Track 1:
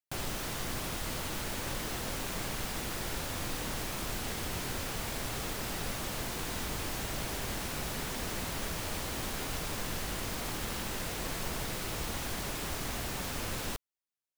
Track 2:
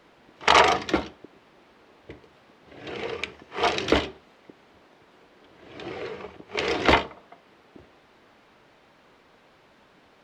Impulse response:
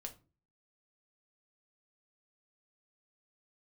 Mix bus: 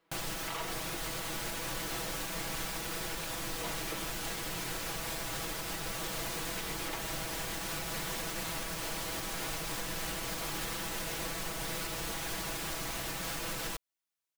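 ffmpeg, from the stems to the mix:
-filter_complex "[0:a]volume=1.5dB[a];[1:a]volume=-18dB[b];[a][b]amix=inputs=2:normalize=0,lowshelf=f=360:g=-5,aecho=1:1:6.1:0.7,alimiter=level_in=2.5dB:limit=-24dB:level=0:latency=1:release=225,volume=-2.5dB"

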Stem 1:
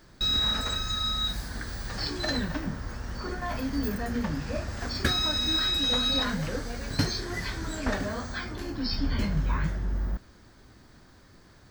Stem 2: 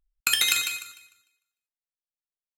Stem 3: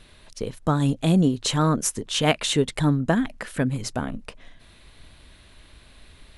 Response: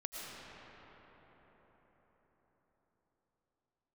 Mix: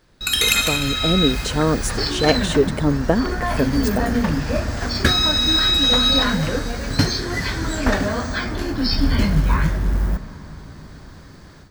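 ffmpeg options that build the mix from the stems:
-filter_complex "[0:a]acrusher=bits=7:mode=log:mix=0:aa=0.000001,volume=-5dB,asplit=2[a][b];[b]volume=-12.5dB[c];[1:a]aphaser=in_gain=1:out_gain=1:delay=2.7:decay=0.55:speed=1.7:type=sinusoidal,volume=-5.5dB,asplit=2[d][e];[e]volume=-4dB[f];[2:a]equalizer=f=460:w=1.2:g=9.5,volume=-14.5dB[g];[3:a]atrim=start_sample=2205[h];[c][f]amix=inputs=2:normalize=0[i];[i][h]afir=irnorm=-1:irlink=0[j];[a][d][g][j]amix=inputs=4:normalize=0,highshelf=f=12k:g=-3.5,dynaudnorm=f=270:g=3:m=14dB"

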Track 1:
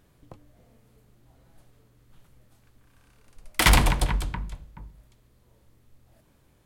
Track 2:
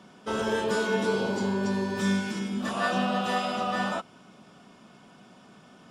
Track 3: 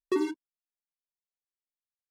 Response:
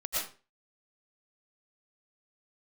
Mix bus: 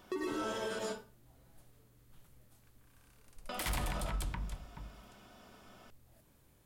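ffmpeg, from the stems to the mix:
-filter_complex "[0:a]volume=-5dB[a];[1:a]volume=-9.5dB,asplit=3[b][c][d];[b]atrim=end=0.79,asetpts=PTS-STARTPTS,afade=t=out:st=0.786:d=0.004:c=hsin[e];[c]atrim=start=0.79:end=3.49,asetpts=PTS-STARTPTS,volume=0[f];[d]atrim=start=3.49,asetpts=PTS-STARTPTS,afade=t=in:d=0.004:c=hsin[g];[e][f][g]concat=n=3:v=0:a=1,asplit=2[h][i];[i]volume=-3.5dB[j];[2:a]volume=-4.5dB,asplit=2[k][l];[l]volume=-6.5dB[m];[h][k]amix=inputs=2:normalize=0,highpass=250,lowpass=6.5k,acompressor=threshold=-46dB:ratio=6,volume=0dB[n];[3:a]atrim=start_sample=2205[o];[j][m]amix=inputs=2:normalize=0[p];[p][o]afir=irnorm=-1:irlink=0[q];[a][n][q]amix=inputs=3:normalize=0,highshelf=f=8.2k:g=9,alimiter=level_in=4dB:limit=-24dB:level=0:latency=1:release=104,volume=-4dB"

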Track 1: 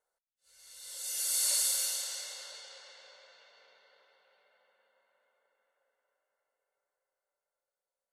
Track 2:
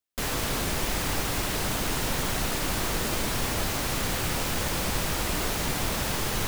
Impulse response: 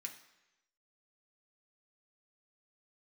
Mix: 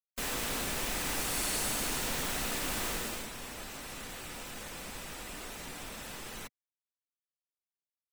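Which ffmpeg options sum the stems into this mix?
-filter_complex "[0:a]volume=-8dB[a];[1:a]equalizer=f=100:t=o:w=1:g=-5.5,volume=-7dB,afade=t=out:st=2.88:d=0.42:silence=0.398107,asplit=2[b][c];[c]volume=-3.5dB[d];[2:a]atrim=start_sample=2205[e];[d][e]afir=irnorm=-1:irlink=0[f];[a][b][f]amix=inputs=3:normalize=0,afftfilt=real='re*gte(hypot(re,im),0.00398)':imag='im*gte(hypot(re,im),0.00398)':win_size=1024:overlap=0.75"

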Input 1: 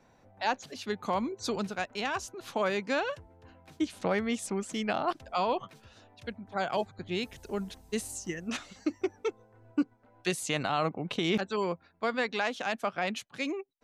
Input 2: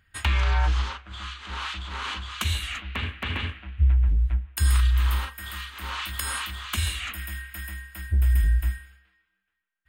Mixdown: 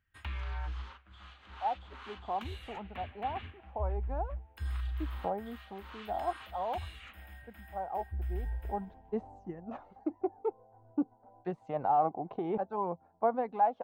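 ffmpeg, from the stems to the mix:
-filter_complex "[0:a]aphaser=in_gain=1:out_gain=1:delay=2.9:decay=0.35:speed=0.5:type=sinusoidal,lowpass=f=810:t=q:w=5.3,adelay=1200,volume=-7dB,afade=t=in:st=8.41:d=0.21:silence=0.421697[a];[1:a]acrossover=split=5100[b][c];[c]acompressor=threshold=-41dB:ratio=4:attack=1:release=60[d];[b][d]amix=inputs=2:normalize=0,equalizer=f=7.7k:t=o:w=1.7:g=-10.5,volume=-15.5dB[e];[a][e]amix=inputs=2:normalize=0"

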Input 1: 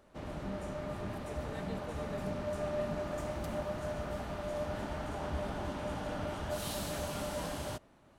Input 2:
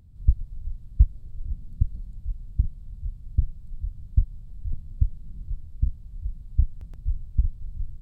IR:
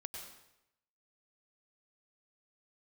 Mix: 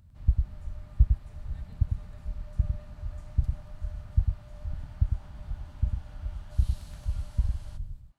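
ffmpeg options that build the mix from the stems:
-filter_complex "[0:a]lowpass=f=12k:w=0.5412,lowpass=f=12k:w=1.3066,equalizer=f=4.4k:t=o:w=0.3:g=3.5,volume=-15.5dB,asplit=2[a][b];[b]volume=-9dB[c];[1:a]volume=0dB,asplit=2[d][e];[e]volume=-4.5dB[f];[2:a]atrim=start_sample=2205[g];[c][g]afir=irnorm=-1:irlink=0[h];[f]aecho=0:1:102:1[i];[a][d][h][i]amix=inputs=4:normalize=0,highpass=f=62:p=1,equalizer=f=420:t=o:w=1.3:g=-9.5"

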